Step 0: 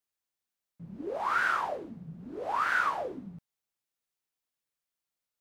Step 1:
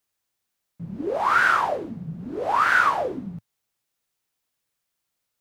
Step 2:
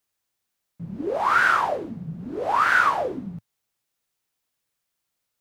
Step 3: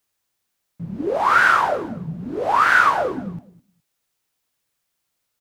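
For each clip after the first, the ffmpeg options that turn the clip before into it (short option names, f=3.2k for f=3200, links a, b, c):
-af "equalizer=f=110:t=o:w=0.8:g=4,volume=9dB"
-af anull
-af "aecho=1:1:208|416:0.112|0.018,volume=4dB"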